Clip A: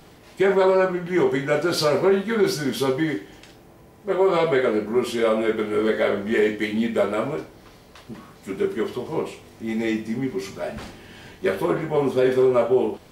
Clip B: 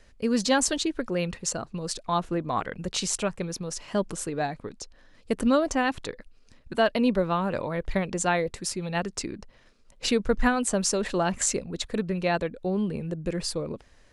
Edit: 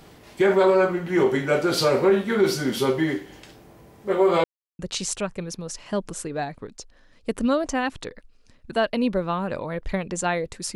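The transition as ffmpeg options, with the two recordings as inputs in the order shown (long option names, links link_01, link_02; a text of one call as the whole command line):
ffmpeg -i cue0.wav -i cue1.wav -filter_complex "[0:a]apad=whole_dur=10.75,atrim=end=10.75,asplit=2[link_01][link_02];[link_01]atrim=end=4.44,asetpts=PTS-STARTPTS,afade=type=out:start_time=4.436:duration=0.004:curve=hsin[link_03];[link_02]atrim=start=4.44:end=4.79,asetpts=PTS-STARTPTS,volume=0[link_04];[1:a]atrim=start=2.81:end=8.77,asetpts=PTS-STARTPTS,afade=type=in:duration=0.004:curve=hsin[link_05];[link_03][link_04][link_05]concat=n=3:v=0:a=1" out.wav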